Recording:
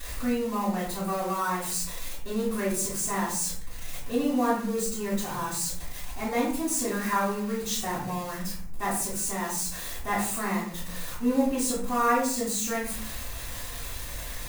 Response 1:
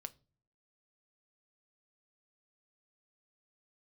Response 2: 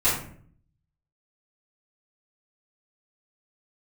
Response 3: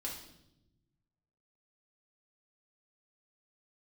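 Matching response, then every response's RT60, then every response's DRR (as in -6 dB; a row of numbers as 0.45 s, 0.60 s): 2; no single decay rate, 0.55 s, 0.90 s; 11.5 dB, -12.5 dB, -3.5 dB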